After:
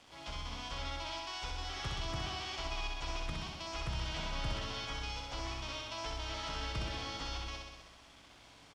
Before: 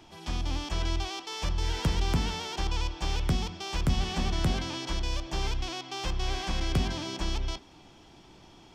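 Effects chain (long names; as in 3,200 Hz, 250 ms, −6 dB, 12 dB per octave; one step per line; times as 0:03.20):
high-pass filter 100 Hz 6 dB per octave
parametric band 270 Hz −10.5 dB 2.4 octaves
in parallel at +2.5 dB: downward compressor 12 to 1, threshold −42 dBFS, peak gain reduction 14.5 dB
on the sum: phase-vocoder pitch shift with formants kept −3 semitones
bit-depth reduction 8 bits, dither none
high-frequency loss of the air 81 metres
double-tracking delay 18 ms −12.5 dB
on a send: flutter between parallel walls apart 10.9 metres, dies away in 1.2 s
on the sum: level −8 dB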